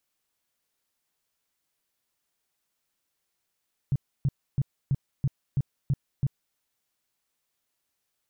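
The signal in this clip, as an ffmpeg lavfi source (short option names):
-f lavfi -i "aevalsrc='0.1*sin(2*PI*137*mod(t,0.33))*lt(mod(t,0.33),5/137)':d=2.64:s=44100"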